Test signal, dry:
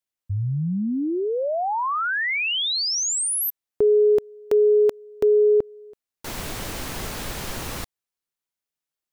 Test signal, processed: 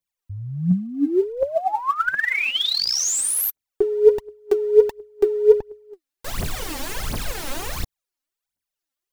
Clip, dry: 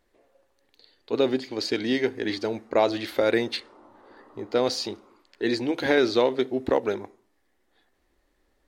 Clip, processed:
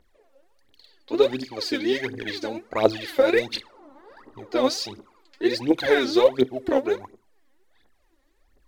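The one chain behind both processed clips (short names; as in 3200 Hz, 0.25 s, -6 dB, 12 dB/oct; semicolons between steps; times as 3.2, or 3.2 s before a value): phaser 1.4 Hz, delay 3.9 ms, feedback 79%; gain -2.5 dB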